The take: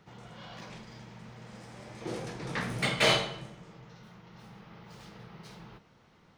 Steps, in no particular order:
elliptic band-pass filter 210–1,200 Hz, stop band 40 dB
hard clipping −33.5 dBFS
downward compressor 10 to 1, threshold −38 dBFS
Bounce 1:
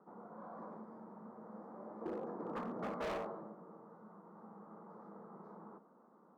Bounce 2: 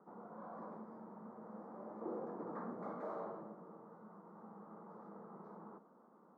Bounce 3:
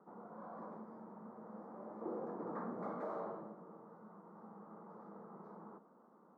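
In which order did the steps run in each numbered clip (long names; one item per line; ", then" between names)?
elliptic band-pass filter, then hard clipping, then downward compressor
hard clipping, then downward compressor, then elliptic band-pass filter
hard clipping, then elliptic band-pass filter, then downward compressor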